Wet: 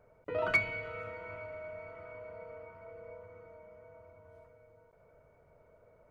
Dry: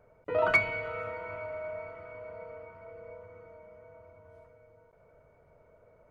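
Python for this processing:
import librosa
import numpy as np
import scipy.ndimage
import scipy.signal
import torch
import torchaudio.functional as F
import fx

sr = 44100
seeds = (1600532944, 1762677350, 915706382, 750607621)

y = fx.dynamic_eq(x, sr, hz=880.0, q=0.82, threshold_db=-44.0, ratio=4.0, max_db=-6)
y = F.gain(torch.from_numpy(y), -2.0).numpy()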